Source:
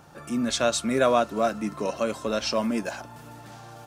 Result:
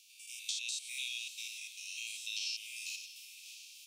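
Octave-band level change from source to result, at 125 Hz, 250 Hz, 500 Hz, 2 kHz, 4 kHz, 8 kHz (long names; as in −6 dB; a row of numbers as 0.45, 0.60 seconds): below −40 dB, below −40 dB, below −40 dB, −9.0 dB, −5.0 dB, −6.0 dB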